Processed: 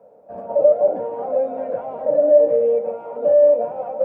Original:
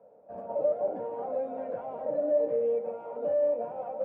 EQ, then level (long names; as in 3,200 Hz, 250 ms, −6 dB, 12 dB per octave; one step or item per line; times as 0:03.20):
dynamic equaliser 580 Hz, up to +6 dB, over −37 dBFS, Q 2.8
+7.5 dB